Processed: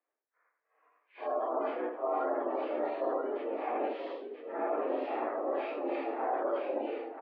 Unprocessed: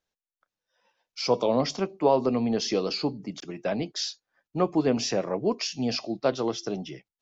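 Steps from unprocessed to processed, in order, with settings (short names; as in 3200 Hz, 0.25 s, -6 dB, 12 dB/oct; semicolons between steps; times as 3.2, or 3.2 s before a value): phase scrambler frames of 0.2 s; harmoniser -7 st 0 dB; echo 81 ms -7 dB; formant shift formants +5 st; reverse; compressor, threshold -29 dBFS, peak gain reduction 15.5 dB; reverse; low-pass opened by the level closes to 1800 Hz, open at -31 dBFS; spectral gate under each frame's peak -30 dB strong; on a send: echo 0.98 s -6.5 dB; on the sum: mistuned SSB +110 Hz 180–2400 Hz; warbling echo 80 ms, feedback 73%, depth 79 cents, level -19.5 dB; gain -1 dB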